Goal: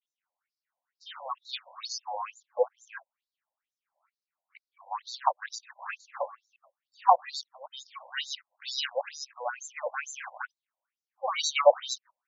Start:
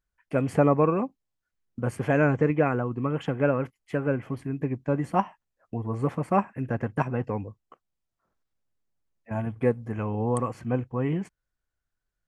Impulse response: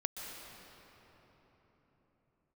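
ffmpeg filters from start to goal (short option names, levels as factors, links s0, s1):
-af "areverse,acrusher=samples=9:mix=1:aa=0.000001:lfo=1:lforange=9:lforate=0.28,afftfilt=real='re*between(b*sr/1024,710*pow(5300/710,0.5+0.5*sin(2*PI*2.2*pts/sr))/1.41,710*pow(5300/710,0.5+0.5*sin(2*PI*2.2*pts/sr))*1.41)':imag='im*between(b*sr/1024,710*pow(5300/710,0.5+0.5*sin(2*PI*2.2*pts/sr))/1.41,710*pow(5300/710,0.5+0.5*sin(2*PI*2.2*pts/sr))*1.41)':win_size=1024:overlap=0.75,volume=2.11"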